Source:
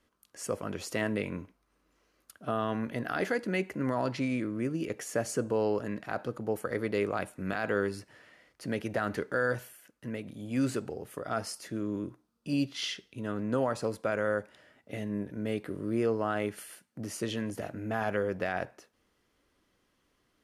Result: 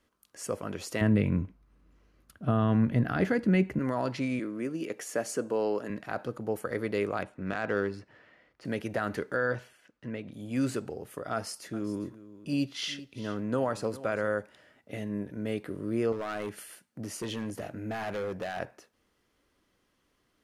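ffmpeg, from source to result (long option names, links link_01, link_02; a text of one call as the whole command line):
ffmpeg -i in.wav -filter_complex "[0:a]asettb=1/sr,asplit=3[link_01][link_02][link_03];[link_01]atrim=end=1.014[link_04];[link_02]atrim=start=1.01:end=3.79,asetpts=PTS-STARTPTS,afade=type=in:duration=0.004:curve=qsin,afade=type=out:start_time=2.776:duration=0.004:curve=qsin,bass=frequency=250:gain=15,treble=frequency=4000:gain=-6[link_05];[link_03]atrim=start=3.786[link_06];[link_04][link_05]acrossfade=duration=0.004:curve1=hsin:curve2=qsin[link_07];[link_07][link_06]acrossfade=duration=0.004:curve1=qsin:curve2=hsin,asettb=1/sr,asplit=3[link_08][link_09][link_10];[link_08]atrim=end=4.394[link_11];[link_09]atrim=start=4.39:end=5.9,asetpts=PTS-STARTPTS,afade=type=in:duration=0.004:curve=qsin,afade=type=out:start_time=1.506:duration=0.004:curve=qsin,highpass=210[link_12];[link_10]atrim=start=5.896[link_13];[link_11][link_12]acrossfade=duration=0.004:curve1=hsin:curve2=qsin[link_14];[link_14][link_13]acrossfade=duration=0.004:curve1=qsin:curve2=hsin,asettb=1/sr,asplit=3[link_15][link_16][link_17];[link_15]atrim=end=7.224[link_18];[link_16]atrim=start=7.22:end=8.65,asetpts=PTS-STARTPTS,afade=type=in:duration=0.004:curve=qsin,afade=type=out:start_time=1.426:duration=0.004:curve=qsin,adynamicsmooth=sensitivity=6.5:basefreq=3600[link_19];[link_17]atrim=start=8.646[link_20];[link_18][link_19]acrossfade=duration=0.004:curve1=hsin:curve2=qsin[link_21];[link_21][link_20]acrossfade=duration=0.004:curve1=qsin:curve2=hsin,asettb=1/sr,asplit=3[link_22][link_23][link_24];[link_22]atrim=end=9.364[link_25];[link_23]atrim=start=9.36:end=10.33,asetpts=PTS-STARTPTS,afade=type=in:duration=0.004:curve=qsin,afade=type=out:start_time=0.966:duration=0.004:curve=qsin,lowpass=4800[link_26];[link_24]atrim=start=10.326[link_27];[link_25][link_26]acrossfade=duration=0.004:curve1=hsin:curve2=qsin[link_28];[link_28][link_27]acrossfade=duration=0.004:curve1=qsin:curve2=hsin,asettb=1/sr,asplit=3[link_29][link_30][link_31];[link_29]atrim=end=11.334[link_32];[link_30]atrim=start=11.33:end=14.28,asetpts=PTS-STARTPTS,afade=type=in:duration=0.004:curve=qsin,afade=type=out:start_time=2.946:duration=0.004:curve=qsin,aecho=1:1:403:0.15,atrim=end_sample=130095[link_33];[link_31]atrim=start=14.276[link_34];[link_32][link_33]acrossfade=duration=0.004:curve1=hsin:curve2=qsin[link_35];[link_35][link_34]acrossfade=duration=0.004:curve1=qsin:curve2=hsin,asettb=1/sr,asplit=3[link_36][link_37][link_38];[link_36]atrim=end=16.124[link_39];[link_37]atrim=start=16.12:end=18.59,asetpts=PTS-STARTPTS,afade=type=in:duration=0.004:curve=qsin,afade=type=out:start_time=2.466:duration=0.004:curve=qsin,asoftclip=type=hard:threshold=-30dB[link_40];[link_38]atrim=start=18.586[link_41];[link_39][link_40]acrossfade=duration=0.004:curve1=hsin:curve2=qsin[link_42];[link_42][link_41]acrossfade=duration=0.004:curve1=qsin:curve2=hsin" out.wav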